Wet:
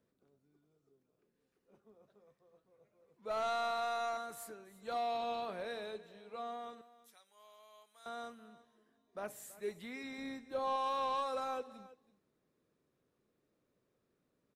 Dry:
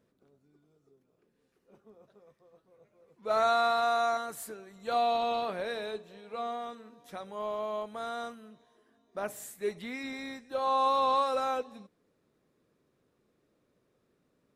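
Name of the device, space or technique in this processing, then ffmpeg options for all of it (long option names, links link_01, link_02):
one-band saturation: -filter_complex "[0:a]asettb=1/sr,asplit=3[link_01][link_02][link_03];[link_01]atrim=end=6.814[link_04];[link_02]atrim=start=6.81:end=8.06,asetpts=PTS-STARTPTS,afade=type=in:duration=0.004:curve=qsin,afade=type=out:start_time=1.246:duration=0.004:curve=qsin,aderivative[link_05];[link_03]atrim=start=8.056[link_06];[link_04][link_05]acrossfade=duration=0.004:curve1=hsin:curve2=qsin[link_07];[link_07][link_06]acrossfade=duration=0.004:curve1=qsin:curve2=hsin,acrossover=split=330|4600[link_08][link_09][link_10];[link_09]asoftclip=type=tanh:threshold=-23.5dB[link_11];[link_08][link_11][link_10]amix=inputs=3:normalize=0,aecho=1:1:328:0.119,asettb=1/sr,asplit=3[link_12][link_13][link_14];[link_12]atrim=end=10.184[link_15];[link_13]atrim=start=10.18:end=10.76,asetpts=PTS-STARTPTS,afade=type=in:duration=0.004:curve=qsin,afade=type=out:start_time=0.576:duration=0.004:curve=qsin,lowshelf=frequency=500:gain=6.5[link_16];[link_14]atrim=start=10.756[link_17];[link_15][link_16]acrossfade=duration=0.004:curve1=hsin:curve2=qsin[link_18];[link_18][link_17]acrossfade=duration=0.004:curve1=qsin:curve2=hsin,volume=-7dB"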